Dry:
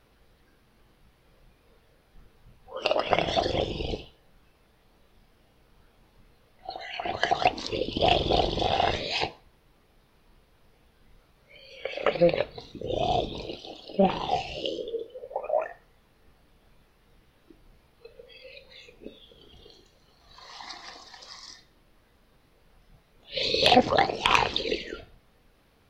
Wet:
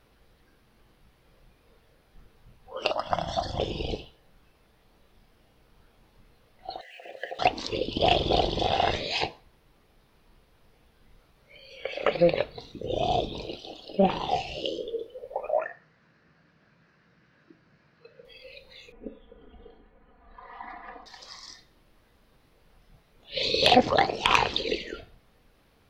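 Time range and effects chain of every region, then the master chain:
0:02.91–0:03.60: parametric band 450 Hz −10 dB 0.24 octaves + phaser with its sweep stopped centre 1,000 Hz, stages 4
0:06.81–0:07.39: spike at every zero crossing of −26 dBFS + formant filter e + linearly interpolated sample-rate reduction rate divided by 2×
0:15.59–0:18.25: upward compression, threshold −56 dBFS + loudspeaker in its box 130–5,600 Hz, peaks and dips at 160 Hz +8 dB, 430 Hz −5 dB, 810 Hz −6 dB, 1,600 Hz +9 dB, 3,400 Hz −9 dB
0:18.92–0:21.06: low-pass filter 2,000 Hz 24 dB per octave + comb filter 4.1 ms, depth 100%
whole clip: no processing

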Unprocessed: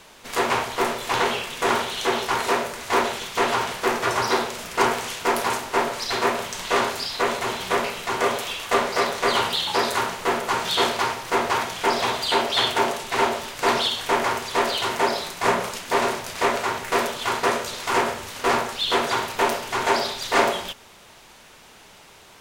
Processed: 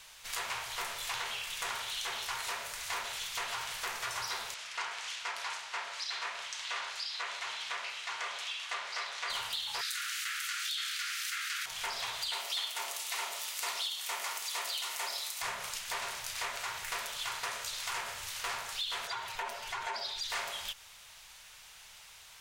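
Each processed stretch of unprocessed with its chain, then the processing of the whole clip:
0:04.54–0:09.30: high-pass filter 850 Hz 6 dB per octave + high-frequency loss of the air 91 metres
0:09.81–0:11.66: Butterworth high-pass 1,300 Hz 72 dB per octave + envelope flattener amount 70%
0:12.33–0:15.42: high-pass filter 310 Hz + high-shelf EQ 6,800 Hz +8.5 dB + notch filter 1,600 Hz, Q 11
0:19.07–0:20.30: expanding power law on the bin magnitudes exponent 1.5 + notch filter 1,200 Hz, Q 25
whole clip: guitar amp tone stack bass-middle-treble 10-0-10; downward compressor 4 to 1, threshold −34 dBFS; level −1 dB

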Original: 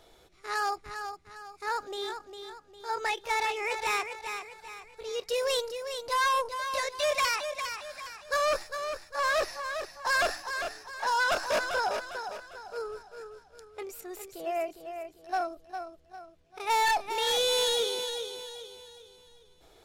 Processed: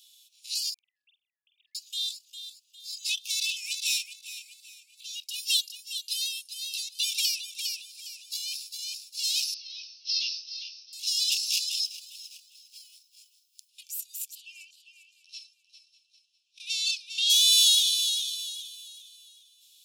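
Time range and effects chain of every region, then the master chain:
0:00.74–0:01.75: three sine waves on the formant tracks + double-tracking delay 48 ms −3 dB
0:03.97–0:08.79: amplitude tremolo 1.9 Hz, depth 44% + dynamic equaliser 6,300 Hz, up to −4 dB, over −48 dBFS, Q 1.2
0:09.54–0:10.93: Butterworth low-pass 5,900 Hz 96 dB per octave + micro pitch shift up and down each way 13 cents
0:11.86–0:13.69: mu-law and A-law mismatch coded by A + downward compressor 4 to 1, threshold −36 dBFS
0:14.35–0:17.30: high-frequency loss of the air 90 metres + single-tap delay 599 ms −17.5 dB
whole clip: dynamic equaliser 4,900 Hz, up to +5 dB, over −47 dBFS, Q 1.3; Butterworth high-pass 2,600 Hz 96 dB per octave; spectral tilt +3 dB per octave; level +1 dB

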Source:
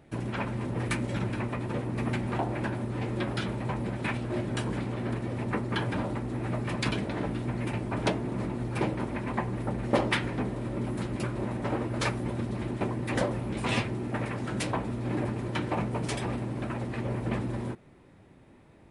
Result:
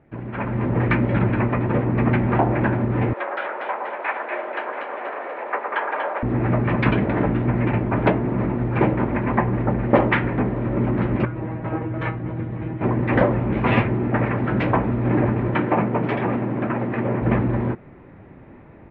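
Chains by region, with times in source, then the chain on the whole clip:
0:03.13–0:06.23: high-pass filter 560 Hz 24 dB per octave + high-shelf EQ 3,000 Hz −9 dB + echo with a time of its own for lows and highs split 1,600 Hz, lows 113 ms, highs 241 ms, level −4 dB
0:11.25–0:12.84: Butterworth band-reject 4,800 Hz, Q 4 + parametric band 100 Hz +9.5 dB 0.71 octaves + tuned comb filter 160 Hz, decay 0.16 s, mix 90%
0:15.54–0:17.22: band-pass filter 150–6,400 Hz + high-frequency loss of the air 56 metres
whole clip: low-pass filter 2,300 Hz 24 dB per octave; automatic gain control gain up to 11.5 dB

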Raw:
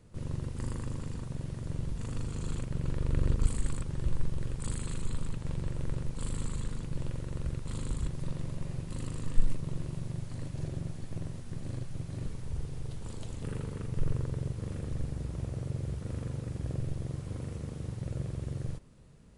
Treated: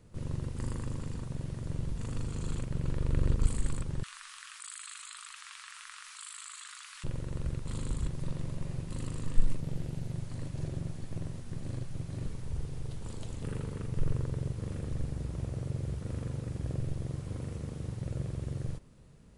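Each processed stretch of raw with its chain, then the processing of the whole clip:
0:04.03–0:07.04: elliptic high-pass filter 1,200 Hz, stop band 60 dB + envelope flattener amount 70%
0:09.60–0:10.12: notch filter 1,100 Hz, Q 5.3 + highs frequency-modulated by the lows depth 0.44 ms
whole clip: no processing

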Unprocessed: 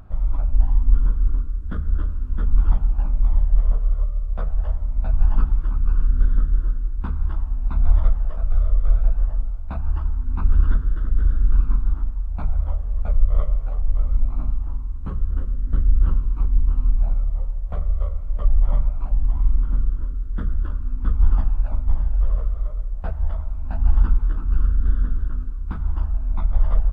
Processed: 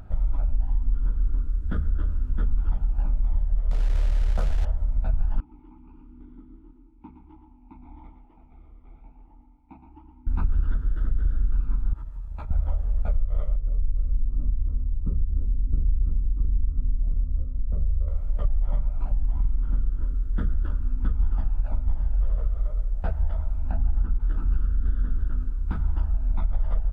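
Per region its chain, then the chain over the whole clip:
0:03.71–0:04.65: log-companded quantiser 6 bits + high-frequency loss of the air 50 metres + envelope flattener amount 100%
0:05.40–0:10.27: formant filter u + single-tap delay 116 ms −8.5 dB
0:11.93–0:12.51: parametric band 200 Hz −14.5 dB 1.4 octaves + downward compressor 3 to 1, threshold −24 dBFS + notch comb filter 730 Hz
0:13.56–0:18.08: moving average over 55 samples + single-tap delay 708 ms −8 dB
0:23.71–0:24.20: low-pass filter 1,300 Hz 6 dB per octave + notch filter 920 Hz
whole clip: notch filter 1,100 Hz, Q 6.8; downward compressor, threshold −19 dBFS; level +1 dB

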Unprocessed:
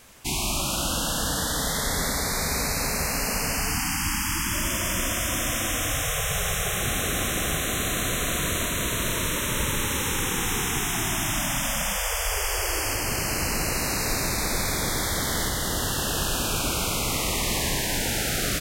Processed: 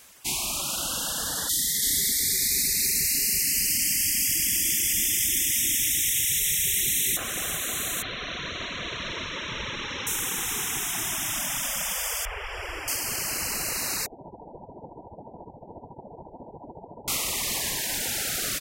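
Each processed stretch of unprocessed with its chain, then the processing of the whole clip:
0:01.49–0:07.17: Chebyshev band-stop filter 390–1,900 Hz, order 4 + high-shelf EQ 5,000 Hz +6.5 dB + single-tap delay 333 ms −3.5 dB
0:08.02–0:10.07: Butterworth low-pass 5,300 Hz 48 dB per octave + single-tap delay 581 ms −7 dB
0:12.25–0:12.88: Savitzky-Golay smoothing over 25 samples + low-shelf EQ 110 Hz +7.5 dB
0:14.06–0:17.08: Chebyshev low-pass filter 970 Hz, order 10 + low-shelf EQ 73 Hz −11.5 dB + amplitude tremolo 14 Hz, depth 51%
whole clip: reverb reduction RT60 0.85 s; spectral tilt +2 dB per octave; level −3.5 dB

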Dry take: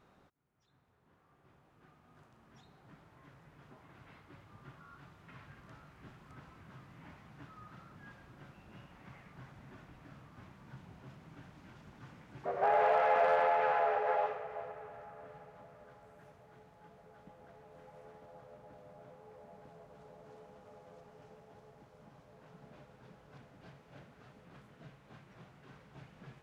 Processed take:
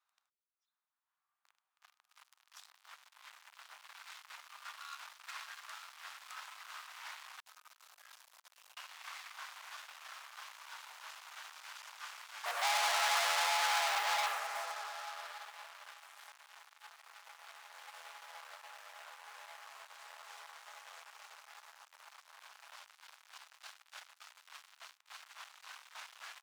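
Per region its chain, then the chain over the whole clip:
0:07.40–0:08.77: parametric band 1,400 Hz −14.5 dB 2.4 octaves + compressor whose output falls as the input rises −58 dBFS, ratio −0.5
0:22.53–0:25.18: Butterworth high-pass 200 Hz 96 dB per octave + double-tracking delay 13 ms −13 dB
whole clip: leveller curve on the samples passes 5; inverse Chebyshev high-pass filter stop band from 310 Hz, stop band 60 dB; parametric band 1,700 Hz −8.5 dB 2.1 octaves; level +1.5 dB

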